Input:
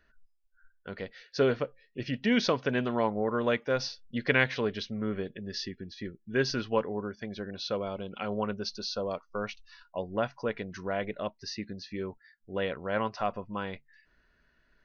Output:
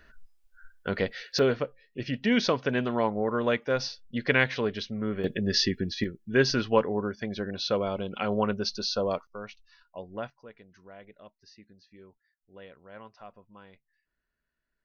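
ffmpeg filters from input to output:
-af "asetnsamples=n=441:p=0,asendcmd='1.39 volume volume 1.5dB;5.24 volume volume 11.5dB;6.04 volume volume 5dB;9.27 volume volume -6dB;10.3 volume volume -16.5dB',volume=10.5dB"

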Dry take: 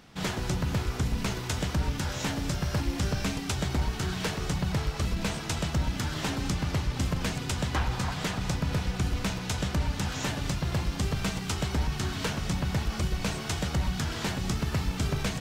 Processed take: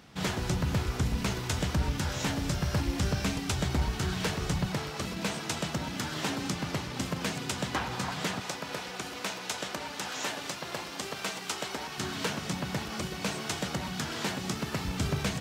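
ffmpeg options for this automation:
-af "asetnsamples=n=441:p=0,asendcmd='4.66 highpass f 170;8.4 highpass f 390;11.98 highpass f 180;14.85 highpass f 78',highpass=43"

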